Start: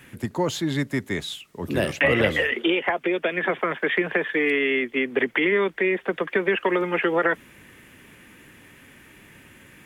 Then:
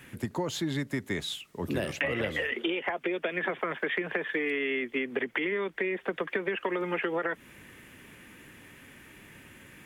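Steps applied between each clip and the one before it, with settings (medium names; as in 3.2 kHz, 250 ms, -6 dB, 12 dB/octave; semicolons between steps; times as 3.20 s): compression, threshold -25 dBFS, peak gain reduction 10 dB; trim -2 dB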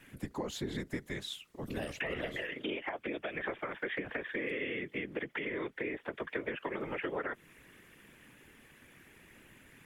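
whisper effect; trim -7 dB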